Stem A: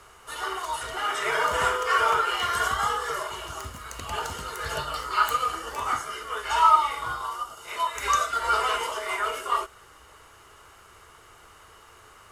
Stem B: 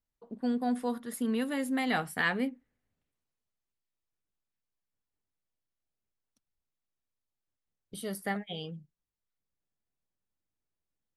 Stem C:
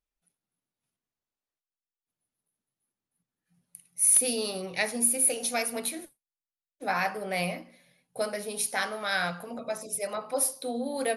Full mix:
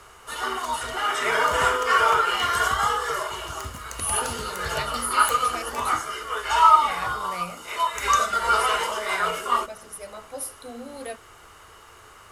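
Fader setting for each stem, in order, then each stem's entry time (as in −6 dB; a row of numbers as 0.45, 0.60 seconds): +3.0, −17.5, −6.5 decibels; 0.00, 0.00, 0.00 seconds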